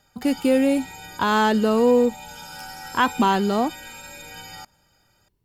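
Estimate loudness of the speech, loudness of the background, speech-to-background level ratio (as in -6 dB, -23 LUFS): -21.0 LUFS, -38.0 LUFS, 17.0 dB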